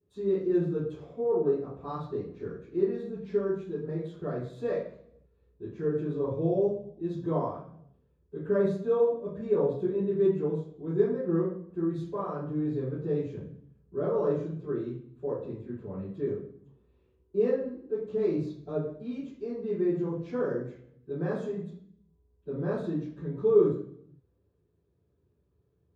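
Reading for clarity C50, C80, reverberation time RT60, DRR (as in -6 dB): 3.5 dB, 7.0 dB, 0.60 s, -15.0 dB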